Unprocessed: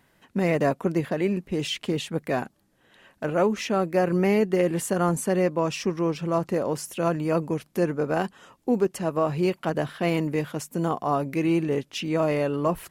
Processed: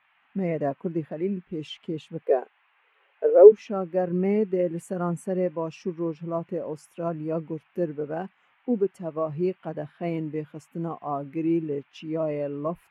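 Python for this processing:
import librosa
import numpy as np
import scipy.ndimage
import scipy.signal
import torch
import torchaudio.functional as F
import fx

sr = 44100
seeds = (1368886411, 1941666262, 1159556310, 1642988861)

y = fx.highpass_res(x, sr, hz=440.0, q=4.4, at=(2.22, 3.52))
y = fx.dmg_noise_band(y, sr, seeds[0], low_hz=720.0, high_hz=2900.0, level_db=-46.0)
y = fx.spectral_expand(y, sr, expansion=1.5)
y = F.gain(torch.from_numpy(y), 3.5).numpy()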